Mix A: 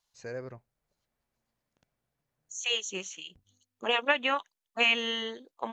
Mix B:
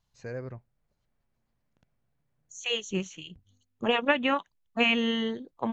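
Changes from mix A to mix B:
second voice: remove high-pass 550 Hz 6 dB/octave; master: add tone controls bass +7 dB, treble -6 dB

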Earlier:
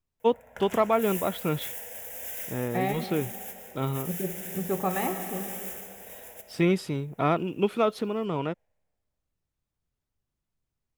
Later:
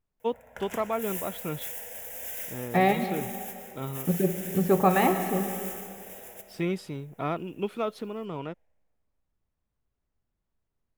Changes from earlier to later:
first voice -6.0 dB; second voice +7.0 dB

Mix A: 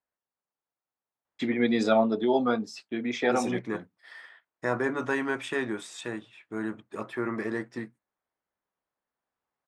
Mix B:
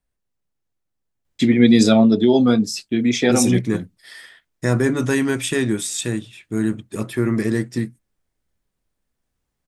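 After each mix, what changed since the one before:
master: remove band-pass filter 990 Hz, Q 1.2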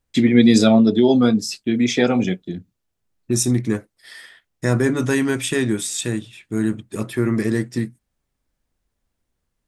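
first voice: entry -1.25 s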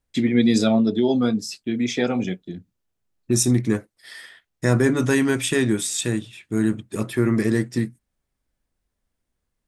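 first voice -5.0 dB

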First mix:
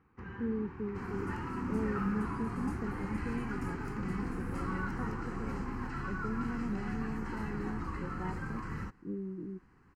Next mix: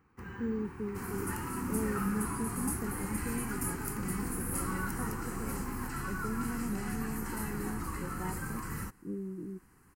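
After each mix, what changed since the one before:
master: remove distance through air 180 m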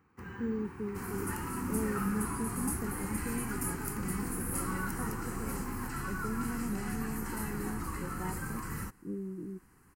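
first sound: add high-pass 60 Hz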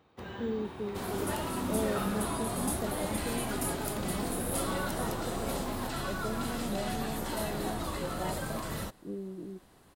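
speech -3.5 dB; master: remove static phaser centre 1.5 kHz, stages 4

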